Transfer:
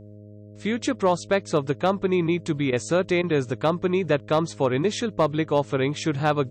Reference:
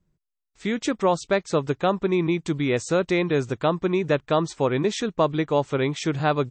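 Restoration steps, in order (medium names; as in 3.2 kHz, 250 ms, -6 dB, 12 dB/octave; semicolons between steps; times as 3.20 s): clip repair -11.5 dBFS; de-hum 104.1 Hz, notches 6; interpolate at 2.71/3.22 s, 14 ms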